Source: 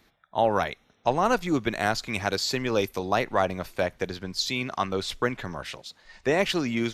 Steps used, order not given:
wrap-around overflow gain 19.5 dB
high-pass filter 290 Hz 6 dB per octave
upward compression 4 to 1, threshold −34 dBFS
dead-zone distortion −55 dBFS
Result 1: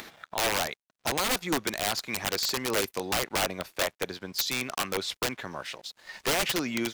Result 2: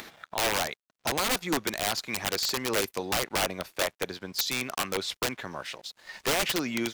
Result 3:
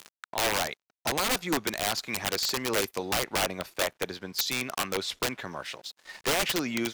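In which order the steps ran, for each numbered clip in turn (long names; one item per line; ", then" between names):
high-pass filter, then upward compression, then wrap-around overflow, then dead-zone distortion
high-pass filter, then upward compression, then dead-zone distortion, then wrap-around overflow
dead-zone distortion, then upward compression, then high-pass filter, then wrap-around overflow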